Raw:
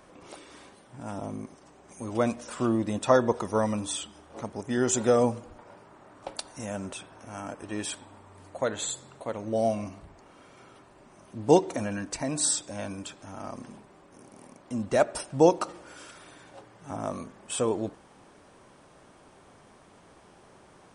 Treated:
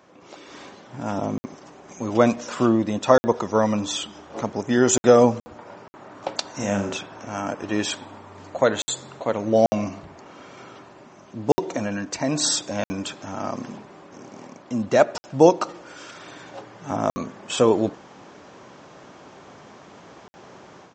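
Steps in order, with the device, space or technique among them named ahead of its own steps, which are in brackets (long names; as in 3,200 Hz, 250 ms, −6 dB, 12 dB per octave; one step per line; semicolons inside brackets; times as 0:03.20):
call with lost packets (high-pass filter 110 Hz 12 dB per octave; downsampling to 16,000 Hz; automatic gain control gain up to 10 dB; dropped packets of 60 ms random)
0:06.50–0:06.99: flutter between parallel walls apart 6.8 metres, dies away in 0.39 s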